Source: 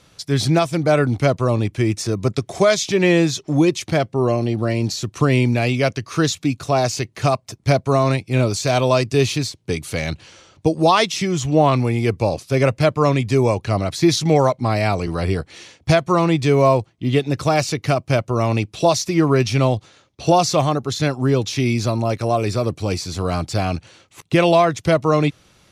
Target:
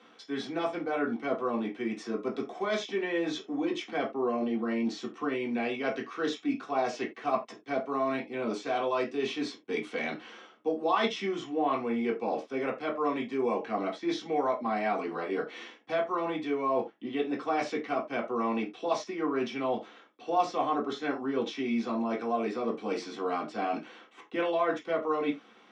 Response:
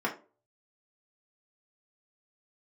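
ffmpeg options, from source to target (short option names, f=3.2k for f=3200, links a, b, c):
-filter_complex "[0:a]areverse,acompressor=threshold=-25dB:ratio=6,areverse,highpass=f=240:w=0.5412,highpass=f=240:w=1.3066,equalizer=f=350:t=q:w=4:g=-3,equalizer=f=610:t=q:w=4:g=-3,equalizer=f=3.2k:t=q:w=4:g=4,equalizer=f=5k:t=q:w=4:g=-7,lowpass=f=6.8k:w=0.5412,lowpass=f=6.8k:w=1.3066[a];[1:a]atrim=start_sample=2205,atrim=end_sample=4410[b];[a][b]afir=irnorm=-1:irlink=0,volume=-8.5dB"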